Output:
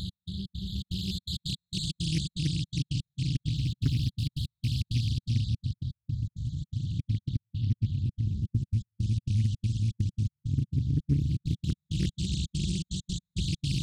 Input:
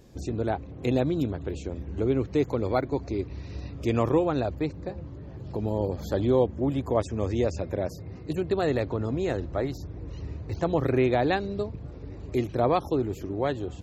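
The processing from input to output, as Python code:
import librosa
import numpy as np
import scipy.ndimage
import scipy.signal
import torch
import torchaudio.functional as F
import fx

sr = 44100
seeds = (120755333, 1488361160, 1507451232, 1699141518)

p1 = fx.high_shelf(x, sr, hz=5200.0, db=5.5)
p2 = fx.hum_notches(p1, sr, base_hz=50, count=4)
p3 = fx.rider(p2, sr, range_db=10, speed_s=0.5)
p4 = p2 + (p3 * 10.0 ** (-3.0 / 20.0))
p5 = fx.paulstretch(p4, sr, seeds[0], factor=18.0, window_s=0.1, from_s=8.54)
p6 = fx.comb_fb(p5, sr, f0_hz=140.0, decay_s=1.6, harmonics='all', damping=0.0, mix_pct=60)
p7 = fx.echo_split(p6, sr, split_hz=420.0, low_ms=701, high_ms=125, feedback_pct=52, wet_db=-5)
p8 = fx.step_gate(p7, sr, bpm=165, pattern='x..xx.xxx.xxx.x.', floor_db=-60.0, edge_ms=4.5)
p9 = fx.brickwall_bandstop(p8, sr, low_hz=190.0, high_hz=3300.0)
p10 = fx.doppler_dist(p9, sr, depth_ms=0.96)
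y = p10 * 10.0 ** (8.0 / 20.0)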